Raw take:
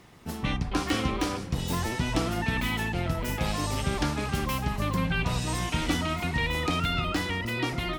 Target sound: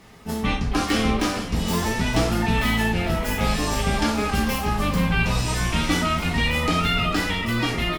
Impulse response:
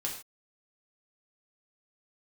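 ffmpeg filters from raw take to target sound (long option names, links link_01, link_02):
-filter_complex "[0:a]asplit=6[link_01][link_02][link_03][link_04][link_05][link_06];[link_02]adelay=448,afreqshift=-69,volume=-13dB[link_07];[link_03]adelay=896,afreqshift=-138,volume=-19.4dB[link_08];[link_04]adelay=1344,afreqshift=-207,volume=-25.8dB[link_09];[link_05]adelay=1792,afreqshift=-276,volume=-32.1dB[link_10];[link_06]adelay=2240,afreqshift=-345,volume=-38.5dB[link_11];[link_01][link_07][link_08][link_09][link_10][link_11]amix=inputs=6:normalize=0[link_12];[1:a]atrim=start_sample=2205,asetrate=66150,aresample=44100[link_13];[link_12][link_13]afir=irnorm=-1:irlink=0,volume=7dB"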